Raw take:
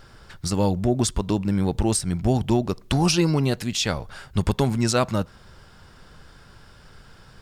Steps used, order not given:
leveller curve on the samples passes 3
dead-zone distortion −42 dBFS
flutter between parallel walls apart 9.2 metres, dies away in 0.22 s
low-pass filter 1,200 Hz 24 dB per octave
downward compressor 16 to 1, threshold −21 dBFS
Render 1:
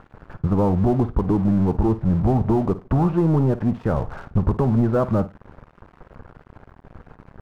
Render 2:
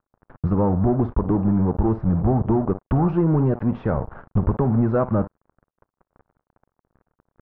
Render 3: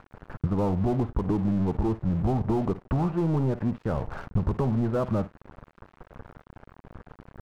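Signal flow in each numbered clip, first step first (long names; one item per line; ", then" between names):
downward compressor, then leveller curve on the samples, then low-pass filter, then dead-zone distortion, then flutter between parallel walls
downward compressor, then flutter between parallel walls, then dead-zone distortion, then leveller curve on the samples, then low-pass filter
leveller curve on the samples, then flutter between parallel walls, then downward compressor, then low-pass filter, then dead-zone distortion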